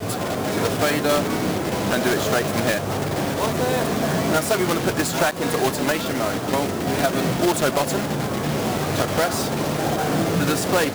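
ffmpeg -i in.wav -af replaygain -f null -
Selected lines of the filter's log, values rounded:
track_gain = +3.5 dB
track_peak = 0.324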